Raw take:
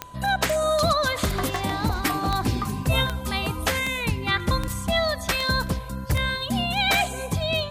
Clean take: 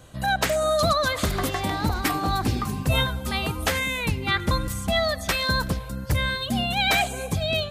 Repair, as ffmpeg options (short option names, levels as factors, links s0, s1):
-af "adeclick=t=4,bandreject=f=1000:w=30"